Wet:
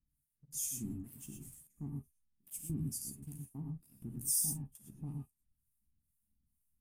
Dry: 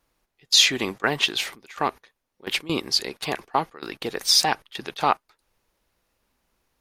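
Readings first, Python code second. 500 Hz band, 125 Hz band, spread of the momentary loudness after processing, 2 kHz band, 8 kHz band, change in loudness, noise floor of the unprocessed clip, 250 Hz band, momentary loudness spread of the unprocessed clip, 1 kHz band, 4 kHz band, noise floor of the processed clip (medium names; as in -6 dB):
-31.5 dB, -2.5 dB, 17 LU, under -40 dB, -9.5 dB, -16.5 dB, -79 dBFS, -11.0 dB, 15 LU, under -40 dB, -33.0 dB, -84 dBFS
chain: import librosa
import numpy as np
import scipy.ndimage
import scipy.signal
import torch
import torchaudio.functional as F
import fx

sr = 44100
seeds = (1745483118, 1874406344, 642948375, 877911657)

p1 = scipy.signal.sosfilt(scipy.signal.ellip(3, 1.0, 40, [210.0, 8900.0], 'bandstop', fs=sr, output='sos'), x)
p2 = p1 + fx.room_early_taps(p1, sr, ms=(14, 49), db=(-7.0, -16.5), dry=0)
p3 = fx.harmonic_tremolo(p2, sr, hz=2.2, depth_pct=100, crossover_hz=2000.0)
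p4 = fx.dynamic_eq(p3, sr, hz=190.0, q=1.8, threshold_db=-53.0, ratio=4.0, max_db=-6)
p5 = fx.backlash(p4, sr, play_db=-50.0)
p6 = p4 + (p5 * 10.0 ** (-3.0 / 20.0))
p7 = fx.rev_gated(p6, sr, seeds[0], gate_ms=140, shape='rising', drr_db=1.5)
y = p7 * 10.0 ** (-5.0 / 20.0)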